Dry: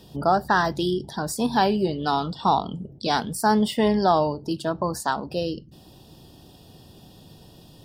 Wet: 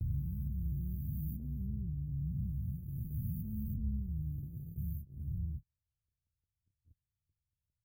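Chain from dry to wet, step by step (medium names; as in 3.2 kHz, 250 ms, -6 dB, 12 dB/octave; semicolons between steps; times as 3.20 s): reverse spectral sustain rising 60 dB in 2.70 s; inverse Chebyshev band-stop 580–6300 Hz, stop band 80 dB; peaking EQ 82 Hz +3.5 dB 0.77 oct; repeats whose band climbs or falls 375 ms, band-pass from 1.2 kHz, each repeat 0.7 oct, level -3 dB; gate -43 dBFS, range -43 dB; trim +3.5 dB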